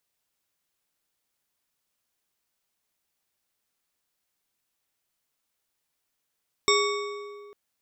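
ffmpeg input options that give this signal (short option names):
-f lavfi -i "aevalsrc='0.0841*pow(10,-3*t/2.11)*sin(2*PI*411*t)+0.075*pow(10,-3*t/1.557)*sin(2*PI*1133.1*t)+0.0668*pow(10,-3*t/1.272)*sin(2*PI*2221*t)+0.0596*pow(10,-3*t/1.094)*sin(2*PI*3671.5*t)+0.0531*pow(10,-3*t/0.97)*sin(2*PI*5482.7*t)+0.0473*pow(10,-3*t/0.877)*sin(2*PI*7661*t)':d=0.85:s=44100"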